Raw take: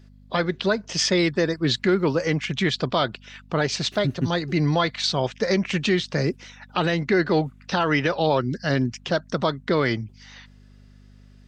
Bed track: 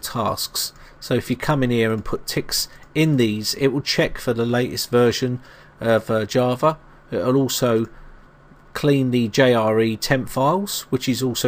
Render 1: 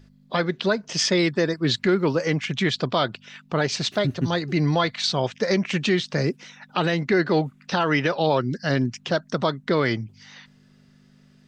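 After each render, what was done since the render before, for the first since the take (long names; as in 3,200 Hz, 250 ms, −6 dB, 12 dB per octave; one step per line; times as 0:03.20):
hum removal 50 Hz, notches 2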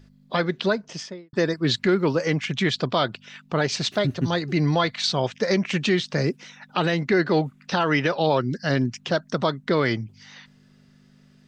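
0:00.64–0:01.33: fade out and dull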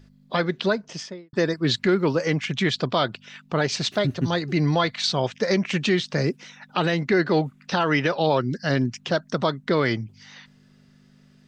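no processing that can be heard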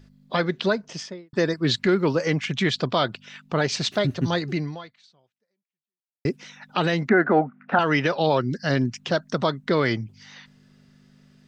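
0:04.50–0:06.25: fade out exponential
0:07.09–0:07.79: loudspeaker in its box 200–2,100 Hz, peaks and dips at 230 Hz +9 dB, 720 Hz +9 dB, 1,400 Hz +9 dB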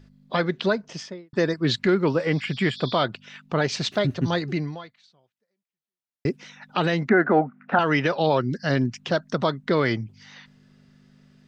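high-shelf EQ 5,800 Hz −5.5 dB
0:02.16–0:02.98: healed spectral selection 3,300–6,800 Hz both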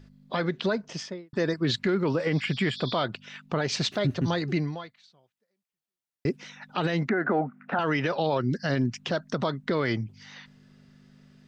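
brickwall limiter −16.5 dBFS, peak gain reduction 9.5 dB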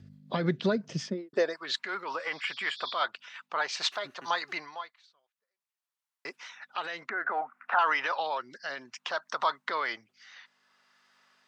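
rotating-speaker cabinet horn 5.5 Hz, later 0.6 Hz, at 0:03.39
high-pass filter sweep 98 Hz → 1,000 Hz, 0:00.90–0:01.59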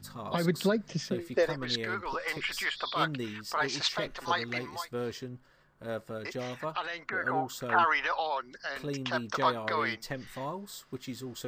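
mix in bed track −19 dB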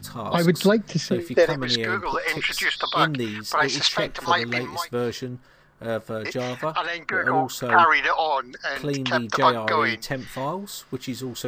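level +9 dB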